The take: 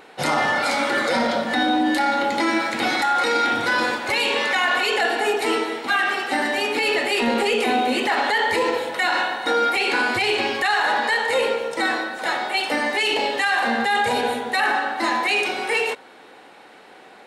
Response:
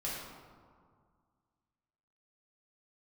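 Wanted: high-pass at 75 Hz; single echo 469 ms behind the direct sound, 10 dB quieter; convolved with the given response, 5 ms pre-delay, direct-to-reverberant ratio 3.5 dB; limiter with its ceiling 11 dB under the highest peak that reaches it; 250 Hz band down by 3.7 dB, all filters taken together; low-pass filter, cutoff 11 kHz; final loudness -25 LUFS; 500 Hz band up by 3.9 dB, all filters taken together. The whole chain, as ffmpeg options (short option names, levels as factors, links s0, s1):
-filter_complex "[0:a]highpass=75,lowpass=11000,equalizer=f=250:t=o:g=-7.5,equalizer=f=500:t=o:g=6.5,alimiter=limit=0.126:level=0:latency=1,aecho=1:1:469:0.316,asplit=2[s0][s1];[1:a]atrim=start_sample=2205,adelay=5[s2];[s1][s2]afir=irnorm=-1:irlink=0,volume=0.473[s3];[s0][s3]amix=inputs=2:normalize=0,volume=0.794"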